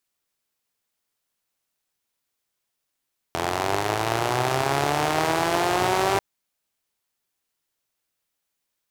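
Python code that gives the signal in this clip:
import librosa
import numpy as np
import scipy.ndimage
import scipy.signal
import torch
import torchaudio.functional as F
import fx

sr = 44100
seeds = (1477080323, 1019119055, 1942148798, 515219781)

y = fx.engine_four_rev(sr, seeds[0], length_s=2.84, rpm=2500, resonances_hz=(130.0, 380.0, 690.0), end_rpm=5900)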